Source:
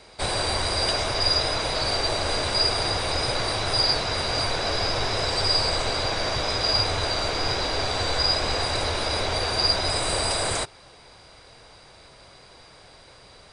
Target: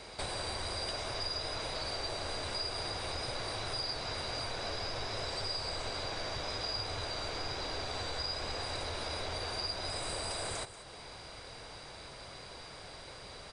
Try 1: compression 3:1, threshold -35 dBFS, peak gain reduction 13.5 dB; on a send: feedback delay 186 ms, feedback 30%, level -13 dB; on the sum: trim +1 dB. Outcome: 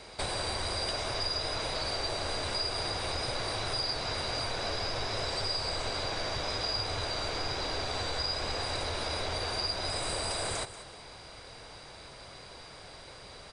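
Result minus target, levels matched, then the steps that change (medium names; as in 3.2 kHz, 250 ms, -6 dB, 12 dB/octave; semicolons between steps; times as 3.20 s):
compression: peak gain reduction -4.5 dB
change: compression 3:1, threshold -41.5 dBFS, peak gain reduction 18 dB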